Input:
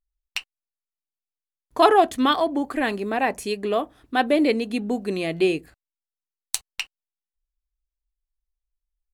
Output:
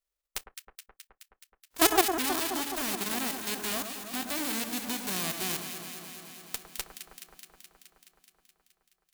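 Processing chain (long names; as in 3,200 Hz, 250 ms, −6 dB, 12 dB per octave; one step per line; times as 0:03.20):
spectral envelope flattened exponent 0.1
output level in coarse steps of 14 dB
delay that swaps between a low-pass and a high-pass 106 ms, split 1,600 Hz, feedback 85%, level −7 dB
level −4.5 dB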